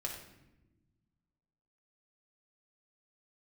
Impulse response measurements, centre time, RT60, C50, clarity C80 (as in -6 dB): 33 ms, no single decay rate, 4.5 dB, 7.5 dB